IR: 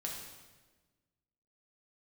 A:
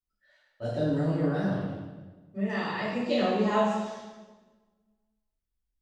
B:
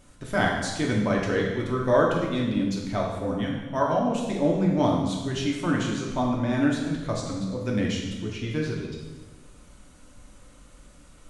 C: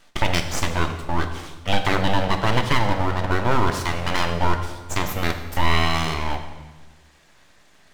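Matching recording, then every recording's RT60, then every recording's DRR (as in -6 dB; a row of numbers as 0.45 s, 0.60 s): B; 1.3 s, 1.3 s, 1.3 s; -11.5 dB, -2.0 dB, 5.5 dB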